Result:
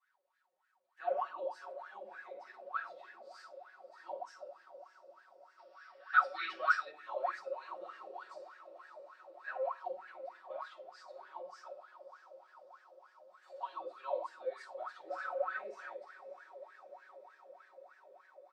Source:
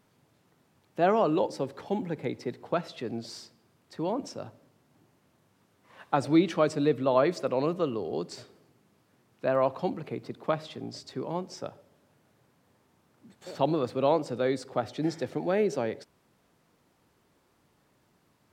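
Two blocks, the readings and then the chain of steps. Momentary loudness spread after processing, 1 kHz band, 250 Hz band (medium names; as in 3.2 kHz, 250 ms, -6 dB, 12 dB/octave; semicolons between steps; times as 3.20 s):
21 LU, -5.5 dB, -35.0 dB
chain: high-pass 300 Hz 12 dB/octave; differentiator; echo that smears into a reverb 611 ms, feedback 76%, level -14 dB; spectral replace 15.11–15.46 s, 410–3100 Hz after; simulated room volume 620 m³, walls furnished, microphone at 9.5 m; wah-wah 3.3 Hz 510–1700 Hz, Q 15; dynamic bell 580 Hz, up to -4 dB, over -54 dBFS, Q 1.1; comb 5.4 ms, depth 96%; time-frequency box 5.59–6.91 s, 1.1–5.7 kHz +11 dB; trim +6.5 dB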